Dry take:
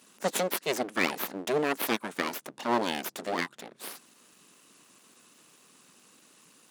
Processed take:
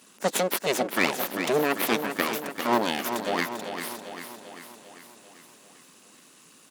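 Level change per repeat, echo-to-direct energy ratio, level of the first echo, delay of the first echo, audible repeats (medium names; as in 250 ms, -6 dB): -5.0 dB, -6.5 dB, -8.0 dB, 395 ms, 6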